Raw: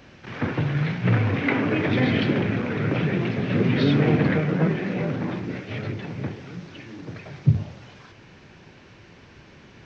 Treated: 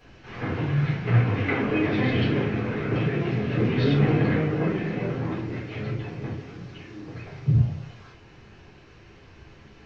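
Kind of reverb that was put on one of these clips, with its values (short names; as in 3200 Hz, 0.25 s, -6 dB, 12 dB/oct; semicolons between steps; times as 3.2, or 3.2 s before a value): shoebox room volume 150 m³, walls furnished, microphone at 3.8 m; gain -10.5 dB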